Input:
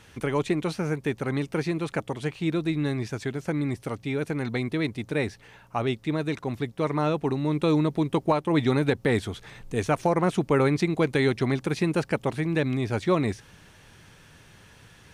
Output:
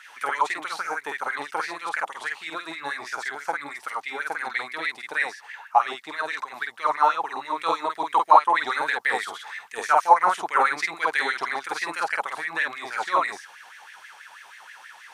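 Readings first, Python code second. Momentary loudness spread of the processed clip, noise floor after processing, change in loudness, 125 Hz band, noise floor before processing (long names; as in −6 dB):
20 LU, −48 dBFS, +1.5 dB, below −30 dB, −53 dBFS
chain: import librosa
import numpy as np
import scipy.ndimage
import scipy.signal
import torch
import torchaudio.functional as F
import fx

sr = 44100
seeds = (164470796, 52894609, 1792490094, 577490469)

y = fx.doubler(x, sr, ms=49.0, db=-2.0)
y = fx.dynamic_eq(y, sr, hz=2400.0, q=1.5, threshold_db=-45.0, ratio=4.0, max_db=-6)
y = fx.filter_lfo_highpass(y, sr, shape='sine', hz=6.2, low_hz=800.0, high_hz=2000.0, q=5.9)
y = y * 10.0 ** (1.0 / 20.0)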